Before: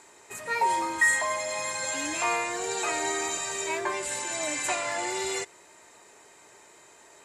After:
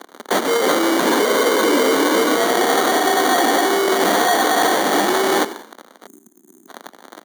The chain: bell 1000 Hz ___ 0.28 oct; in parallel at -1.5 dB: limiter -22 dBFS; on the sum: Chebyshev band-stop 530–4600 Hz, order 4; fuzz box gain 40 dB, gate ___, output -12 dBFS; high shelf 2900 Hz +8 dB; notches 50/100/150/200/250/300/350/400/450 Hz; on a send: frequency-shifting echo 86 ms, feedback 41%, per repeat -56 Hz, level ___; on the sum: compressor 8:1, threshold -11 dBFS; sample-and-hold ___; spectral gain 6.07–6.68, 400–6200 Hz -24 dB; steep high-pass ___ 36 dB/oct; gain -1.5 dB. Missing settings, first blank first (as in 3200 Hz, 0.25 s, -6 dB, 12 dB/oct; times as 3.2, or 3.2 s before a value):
+3 dB, -46 dBFS, -17 dB, 17×, 220 Hz